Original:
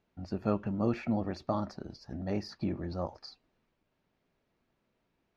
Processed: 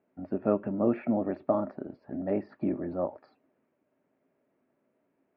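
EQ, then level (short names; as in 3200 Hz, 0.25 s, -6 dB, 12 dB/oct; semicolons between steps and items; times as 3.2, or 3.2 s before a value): speaker cabinet 150–2300 Hz, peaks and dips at 270 Hz +9 dB, 390 Hz +5 dB, 600 Hz +9 dB; 0.0 dB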